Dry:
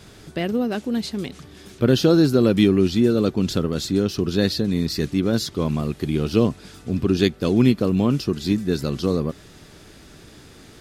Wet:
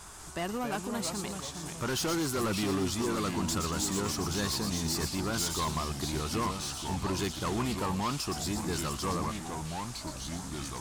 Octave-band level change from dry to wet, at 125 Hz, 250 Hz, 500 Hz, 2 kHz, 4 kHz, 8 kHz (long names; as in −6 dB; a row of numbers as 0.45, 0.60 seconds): −11.5, −14.0, −14.0, −5.0, −5.5, +4.5 decibels